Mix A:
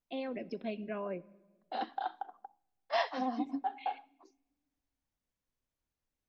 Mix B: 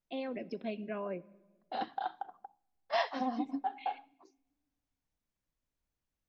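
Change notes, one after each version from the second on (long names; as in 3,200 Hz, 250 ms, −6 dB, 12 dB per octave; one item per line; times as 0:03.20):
second voice: remove Butterworth high-pass 210 Hz 48 dB per octave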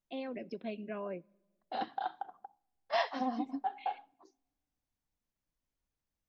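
first voice: send −11.0 dB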